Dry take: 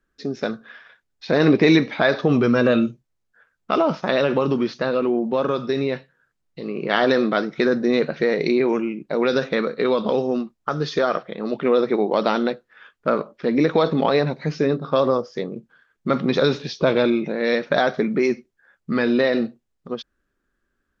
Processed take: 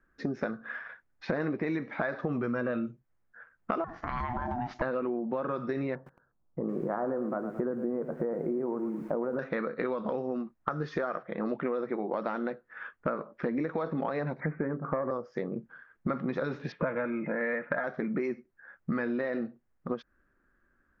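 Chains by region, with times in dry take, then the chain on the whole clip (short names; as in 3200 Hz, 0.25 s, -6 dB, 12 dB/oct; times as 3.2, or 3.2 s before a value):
3.84–4.82 compressor, threshold -25 dBFS + ring modulator 490 Hz
5.95–9.39 LPF 1100 Hz 24 dB/oct + lo-fi delay 0.111 s, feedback 35%, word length 7-bit, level -12 dB
14.4–15.11 self-modulated delay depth 0.091 ms + steep low-pass 2300 Hz 96 dB/oct
16.72–17.84 LPF 2400 Hz 24 dB/oct + bell 1900 Hz +7 dB 2.1 oct + notch comb 380 Hz
whole clip: resonant high shelf 2500 Hz -12 dB, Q 1.5; notch 420 Hz, Q 12; compressor 10:1, threshold -31 dBFS; gain +2.5 dB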